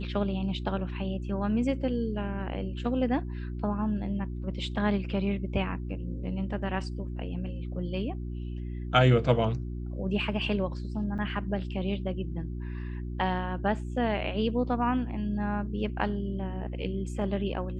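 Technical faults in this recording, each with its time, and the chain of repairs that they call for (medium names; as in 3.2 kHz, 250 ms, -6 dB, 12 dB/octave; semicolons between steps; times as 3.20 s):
hum 60 Hz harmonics 6 -35 dBFS
11.18–11.19 s: dropout 6.7 ms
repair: de-hum 60 Hz, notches 6; interpolate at 11.18 s, 6.7 ms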